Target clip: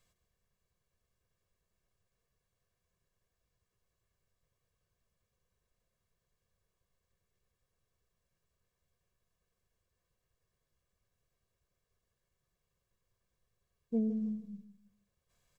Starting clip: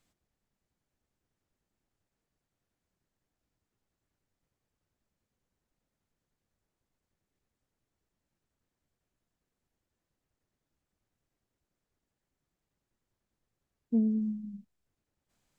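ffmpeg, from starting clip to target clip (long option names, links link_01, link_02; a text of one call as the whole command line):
ffmpeg -i in.wav -filter_complex "[0:a]bandreject=frequency=610:width=12,aecho=1:1:1.8:0.75,asplit=2[link_01][link_02];[link_02]aecho=0:1:158|316|474:0.237|0.0783|0.0258[link_03];[link_01][link_03]amix=inputs=2:normalize=0,volume=-1dB" out.wav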